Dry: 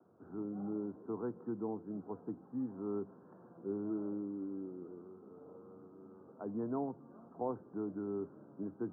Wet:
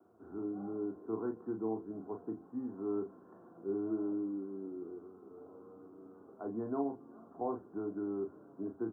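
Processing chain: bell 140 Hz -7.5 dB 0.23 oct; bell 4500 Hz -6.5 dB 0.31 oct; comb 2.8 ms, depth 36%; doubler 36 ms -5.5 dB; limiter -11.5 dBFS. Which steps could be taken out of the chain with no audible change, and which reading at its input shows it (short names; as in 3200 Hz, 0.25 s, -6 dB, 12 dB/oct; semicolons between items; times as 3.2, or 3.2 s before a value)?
bell 4500 Hz: input band ends at 1400 Hz; limiter -11.5 dBFS: input peak -23.0 dBFS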